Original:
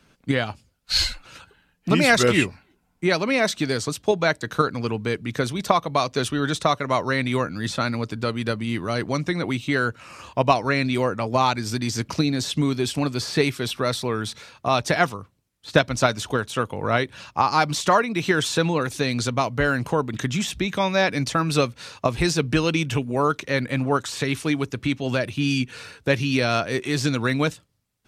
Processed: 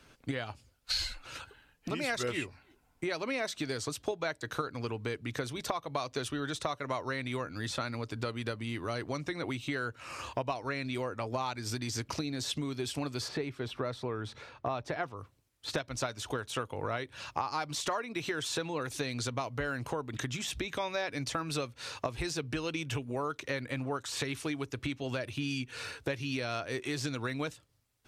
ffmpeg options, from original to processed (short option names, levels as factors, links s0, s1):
-filter_complex "[0:a]asplit=3[s0][s1][s2];[s0]afade=t=out:st=13.27:d=0.02[s3];[s1]lowpass=f=1300:p=1,afade=t=in:st=13.27:d=0.02,afade=t=out:st=15.16:d=0.02[s4];[s2]afade=t=in:st=15.16:d=0.02[s5];[s3][s4][s5]amix=inputs=3:normalize=0,acompressor=threshold=0.0282:ratio=6,equalizer=f=190:w=3.7:g=-12.5"